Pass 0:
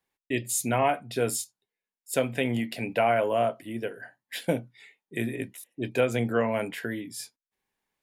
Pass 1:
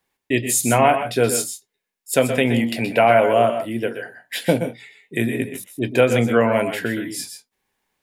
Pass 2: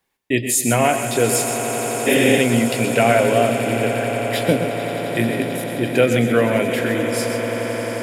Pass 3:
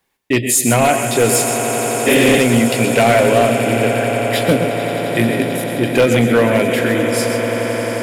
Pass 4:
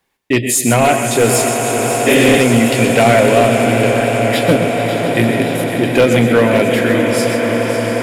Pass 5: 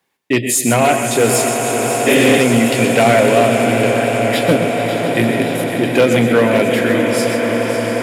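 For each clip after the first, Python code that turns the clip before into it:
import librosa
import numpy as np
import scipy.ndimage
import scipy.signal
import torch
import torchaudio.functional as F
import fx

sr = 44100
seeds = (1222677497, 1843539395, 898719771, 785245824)

y1 = fx.echo_multitap(x, sr, ms=(122, 134, 155), db=(-11.0, -12.0, -18.5))
y1 = F.gain(torch.from_numpy(y1), 8.5).numpy()
y2 = fx.echo_swell(y1, sr, ms=88, loudest=8, wet_db=-14.5)
y2 = fx.dynamic_eq(y2, sr, hz=920.0, q=1.6, threshold_db=-29.0, ratio=4.0, max_db=-6)
y2 = fx.spec_repair(y2, sr, seeds[0], start_s=2.09, length_s=0.27, low_hz=200.0, high_hz=9600.0, source='after')
y2 = F.gain(torch.from_numpy(y2), 1.0).numpy()
y3 = np.clip(y2, -10.0 ** (-11.0 / 20.0), 10.0 ** (-11.0 / 20.0))
y3 = F.gain(torch.from_numpy(y3), 4.5).numpy()
y4 = fx.high_shelf(y3, sr, hz=7700.0, db=-4.0)
y4 = fx.echo_warbled(y4, sr, ms=555, feedback_pct=68, rate_hz=2.8, cents=95, wet_db=-10.5)
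y4 = F.gain(torch.from_numpy(y4), 1.5).numpy()
y5 = scipy.signal.sosfilt(scipy.signal.butter(2, 110.0, 'highpass', fs=sr, output='sos'), y4)
y5 = F.gain(torch.from_numpy(y5), -1.0).numpy()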